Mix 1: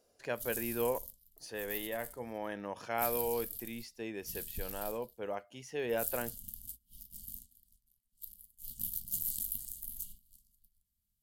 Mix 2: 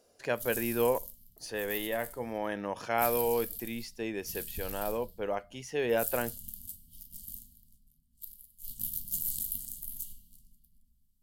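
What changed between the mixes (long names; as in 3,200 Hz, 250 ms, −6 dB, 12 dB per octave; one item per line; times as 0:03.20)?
speech +5.5 dB
reverb: on, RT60 2.3 s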